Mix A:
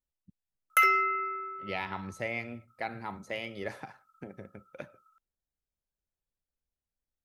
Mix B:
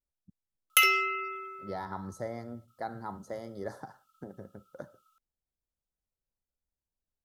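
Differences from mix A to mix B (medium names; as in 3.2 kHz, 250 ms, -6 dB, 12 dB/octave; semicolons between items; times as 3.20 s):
speech: add Butterworth band-stop 2.6 kHz, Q 0.84; background: add resonant high shelf 2.3 kHz +9 dB, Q 3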